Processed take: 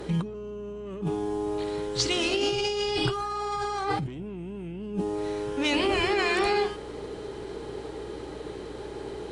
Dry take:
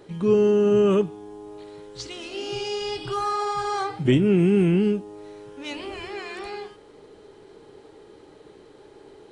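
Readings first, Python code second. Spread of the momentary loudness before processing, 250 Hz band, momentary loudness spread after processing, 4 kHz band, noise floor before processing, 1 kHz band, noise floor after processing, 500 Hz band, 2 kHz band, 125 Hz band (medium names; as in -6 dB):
23 LU, -7.5 dB, 14 LU, +5.5 dB, -50 dBFS, -0.5 dB, -39 dBFS, -5.5 dB, +5.0 dB, -6.5 dB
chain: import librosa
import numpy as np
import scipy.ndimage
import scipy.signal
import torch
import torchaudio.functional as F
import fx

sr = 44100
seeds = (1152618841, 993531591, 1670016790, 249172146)

y = fx.cheby_harmonics(x, sr, harmonics=(5,), levels_db=(-19,), full_scale_db=-7.5)
y = fx.over_compress(y, sr, threshold_db=-30.0, ratio=-1.0)
y = fx.add_hum(y, sr, base_hz=60, snr_db=19)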